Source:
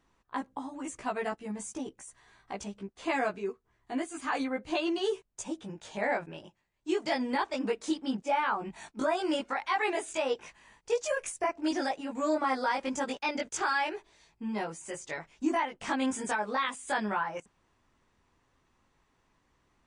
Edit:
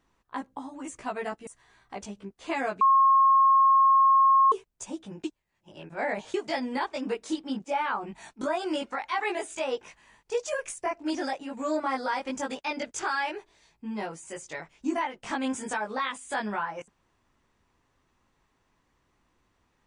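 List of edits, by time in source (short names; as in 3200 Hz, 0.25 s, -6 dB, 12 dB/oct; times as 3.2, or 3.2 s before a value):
1.47–2.05 cut
3.39–5.1 bleep 1080 Hz -16 dBFS
5.82–6.92 reverse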